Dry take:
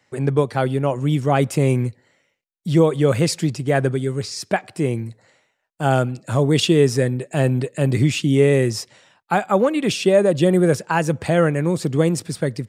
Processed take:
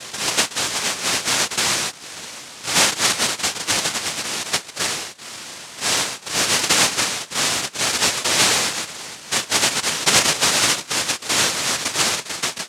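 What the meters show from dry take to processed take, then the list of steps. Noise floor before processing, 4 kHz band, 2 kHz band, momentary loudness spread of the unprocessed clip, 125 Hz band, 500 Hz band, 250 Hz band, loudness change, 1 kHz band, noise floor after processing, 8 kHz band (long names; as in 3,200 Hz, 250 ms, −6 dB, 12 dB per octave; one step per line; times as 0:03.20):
−71 dBFS, +12.0 dB, +7.0 dB, 8 LU, −18.0 dB, −12.0 dB, −13.0 dB, +1.0 dB, +0.5 dB, −39 dBFS, +15.0 dB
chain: spike at every zero crossing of −16 dBFS
cochlear-implant simulation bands 1
level −2.5 dB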